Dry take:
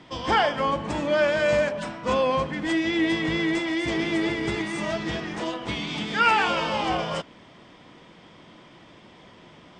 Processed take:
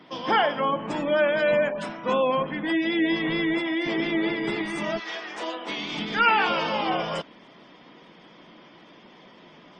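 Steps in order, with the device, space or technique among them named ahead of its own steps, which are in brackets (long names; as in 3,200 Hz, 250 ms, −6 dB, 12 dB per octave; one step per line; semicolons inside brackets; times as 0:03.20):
0:04.98–0:05.92: high-pass filter 900 Hz → 210 Hz 12 dB per octave
noise-suppressed video call (high-pass filter 160 Hz 24 dB per octave; gate on every frequency bin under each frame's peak −30 dB strong; Opus 24 kbit/s 48,000 Hz)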